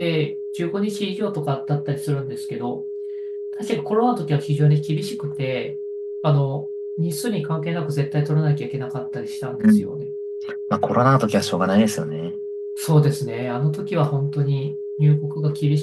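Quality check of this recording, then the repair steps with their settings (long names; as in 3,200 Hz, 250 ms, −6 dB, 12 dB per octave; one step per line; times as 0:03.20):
whistle 410 Hz −27 dBFS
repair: notch filter 410 Hz, Q 30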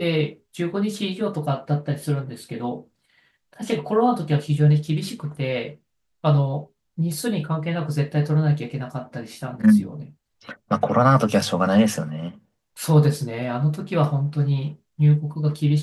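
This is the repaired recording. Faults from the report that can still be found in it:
none of them is left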